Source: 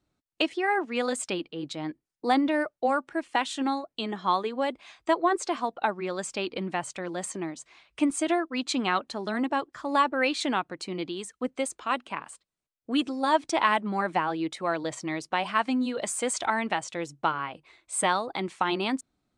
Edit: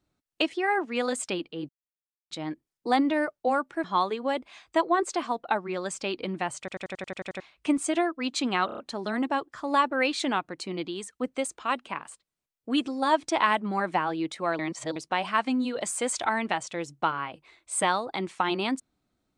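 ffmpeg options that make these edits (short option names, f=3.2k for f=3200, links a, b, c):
-filter_complex "[0:a]asplit=18[a][b][c][d][e][f][g][h][i][j][k][l][m][n][o][p][q][r];[a]atrim=end=1.69,asetpts=PTS-STARTPTS,afade=t=out:st=1.686:d=0.004:c=hsin,apad=pad_dur=0.62[s];[b]atrim=start=1.69:end=3.222,asetpts=PTS-STARTPTS,afade=t=in:d=0.004:c=hsin[t];[c]atrim=start=4.168:end=7.012[u];[d]atrim=start=6.918:end=7.012[v];[e]atrim=start=6.918:end=7.012[w];[f]atrim=start=6.918:end=7.012[x];[g]atrim=start=6.918:end=7.012[y];[h]atrim=start=6.918:end=7.012[z];[i]atrim=start=6.918:end=7.012[aa];[j]atrim=start=6.918:end=7.012[ab];[k]atrim=start=6.918:end=7.012[ac];[l]atrim=start=7.728:end=9.022[ad];[m]atrim=start=8.988:end=9.022[ae];[n]atrim=start=8.988:end=9.022[af];[o]atrim=start=8.988:end=9.022[ag];[p]atrim=start=8.988:end=14.802[ah];[q]atrim=start=14.798:end=15.172,asetpts=PTS-STARTPTS,areverse[ai];[r]atrim=start=15.168[aj];[s][t]concat=n=2:v=0:a=1[ak];[ak][u]acrossfade=d=0.004:c1=hsin:c2=hsin[al];[al][v]acrossfade=d=0.004:c1=hsin:c2=hsin[am];[am][w]acrossfade=d=0.004:c1=hsin:c2=hsin[an];[an][x]acrossfade=d=0.004:c1=hsin:c2=hsin[ao];[ao][y]acrossfade=d=0.004:c1=hsin:c2=hsin[ap];[ap][z]acrossfade=d=0.004:c1=hsin:c2=hsin[aq];[aq][aa]acrossfade=d=0.004:c1=hsin:c2=hsin[ar];[ar][ab]acrossfade=d=0.004:c1=hsin:c2=hsin[as];[as][ac]acrossfade=d=0.004:c1=hsin:c2=hsin[at];[at][ad]acrossfade=d=0.004:c1=hsin:c2=hsin[au];[au][ae]acrossfade=d=0.004:c1=hsin:c2=hsin[av];[av][af]acrossfade=d=0.004:c1=hsin:c2=hsin[aw];[aw][ag]acrossfade=d=0.004:c1=hsin:c2=hsin[ax];[ax][ah]acrossfade=d=0.004:c1=hsin:c2=hsin[ay];[ay][ai]acrossfade=d=0.004:c1=hsin:c2=hsin[az];[az][aj]acrossfade=d=0.004:c1=hsin:c2=hsin"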